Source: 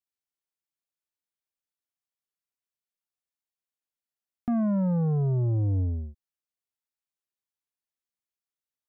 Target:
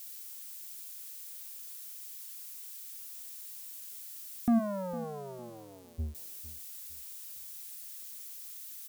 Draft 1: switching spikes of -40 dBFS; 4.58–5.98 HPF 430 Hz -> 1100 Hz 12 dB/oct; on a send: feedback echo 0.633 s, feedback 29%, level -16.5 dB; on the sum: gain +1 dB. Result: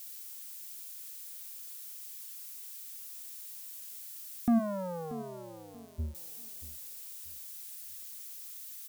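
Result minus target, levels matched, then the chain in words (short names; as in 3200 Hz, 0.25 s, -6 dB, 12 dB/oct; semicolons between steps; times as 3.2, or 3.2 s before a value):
echo 0.178 s late
switching spikes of -40 dBFS; 4.58–5.98 HPF 430 Hz -> 1100 Hz 12 dB/oct; on a send: feedback echo 0.455 s, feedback 29%, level -16.5 dB; on the sum: gain +1 dB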